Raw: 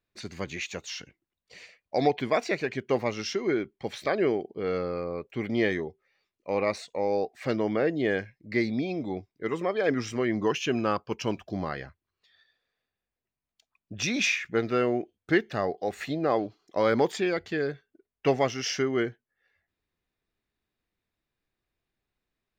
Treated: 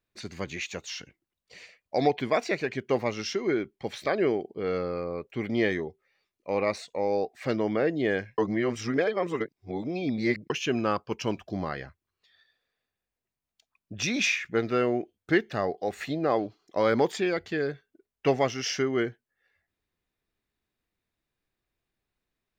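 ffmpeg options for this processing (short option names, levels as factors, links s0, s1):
-filter_complex "[0:a]asplit=3[s0][s1][s2];[s0]atrim=end=8.382[s3];[s1]atrim=start=8.378:end=10.502,asetpts=PTS-STARTPTS,areverse[s4];[s2]atrim=start=10.498[s5];[s3][s4]acrossfade=d=0.004:c1=hsin:c2=hsin[s6];[s6][s5]acrossfade=d=0.004:c1=hsin:c2=hsin"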